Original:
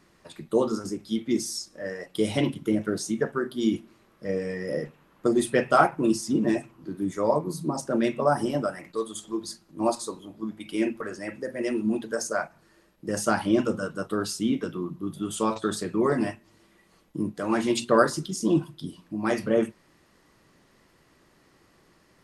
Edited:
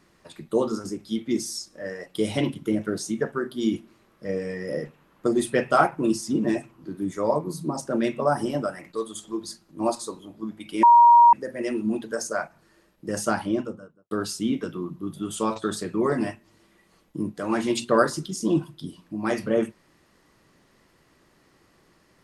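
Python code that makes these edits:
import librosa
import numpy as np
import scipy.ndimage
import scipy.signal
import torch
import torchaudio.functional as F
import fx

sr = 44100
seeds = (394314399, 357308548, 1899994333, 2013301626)

y = fx.studio_fade_out(x, sr, start_s=13.2, length_s=0.91)
y = fx.edit(y, sr, fx.bleep(start_s=10.83, length_s=0.5, hz=947.0, db=-9.5), tone=tone)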